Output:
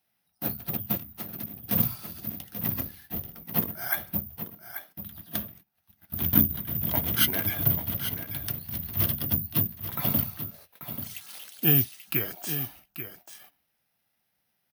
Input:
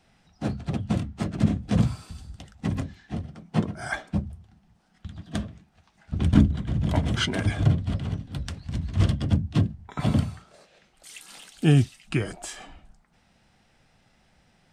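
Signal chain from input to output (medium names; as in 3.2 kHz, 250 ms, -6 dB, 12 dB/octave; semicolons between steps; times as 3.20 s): 2.79–3.44 s: octave divider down 2 oct, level +3 dB; high-pass 83 Hz 12 dB/octave; bass shelf 410 Hz -6 dB; band-stop 7.7 kHz, Q 5.4; delay 836 ms -10.5 dB; 0.96–1.63 s: compression 10:1, threshold -36 dBFS, peak gain reduction 16.5 dB; treble shelf 2.5 kHz +4.5 dB; gate -52 dBFS, range -14 dB; careless resampling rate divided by 3×, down filtered, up zero stuff; trim -3 dB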